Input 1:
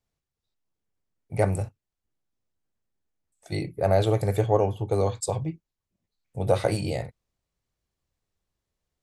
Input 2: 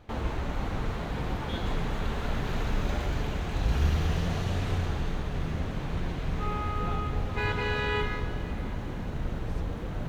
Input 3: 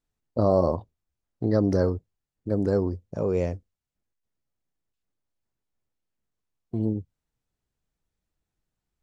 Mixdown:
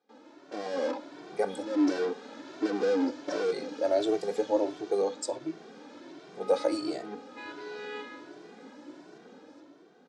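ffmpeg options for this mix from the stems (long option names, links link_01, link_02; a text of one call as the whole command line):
ffmpeg -i stem1.wav -i stem2.wav -i stem3.wav -filter_complex "[0:a]volume=-9.5dB,asplit=2[link_01][link_02];[1:a]volume=-14.5dB[link_03];[2:a]aecho=1:1:3.9:0.78,acompressor=threshold=-27dB:ratio=6,asplit=2[link_04][link_05];[link_05]highpass=frequency=720:poles=1,volume=30dB,asoftclip=type=tanh:threshold=-25dB[link_06];[link_04][link_06]amix=inputs=2:normalize=0,lowpass=frequency=3100:poles=1,volume=-6dB,adelay=150,volume=-4dB[link_07];[link_02]apad=whole_len=404712[link_08];[link_07][link_08]sidechaincompress=threshold=-50dB:ratio=8:attack=5.7:release=145[link_09];[link_01][link_03][link_09]amix=inputs=3:normalize=0,dynaudnorm=framelen=130:gausssize=11:maxgain=9dB,highpass=frequency=280:width=0.5412,highpass=frequency=280:width=1.3066,equalizer=frequency=290:width_type=q:width=4:gain=7,equalizer=frequency=690:width_type=q:width=4:gain=-3,equalizer=frequency=1100:width_type=q:width=4:gain=-6,equalizer=frequency=2000:width_type=q:width=4:gain=-6,equalizer=frequency=2800:width_type=q:width=4:gain=-6,equalizer=frequency=5100:width_type=q:width=4:gain=5,lowpass=frequency=7800:width=0.5412,lowpass=frequency=7800:width=1.3066,asplit=2[link_10][link_11];[link_11]adelay=2.1,afreqshift=1.4[link_12];[link_10][link_12]amix=inputs=2:normalize=1" out.wav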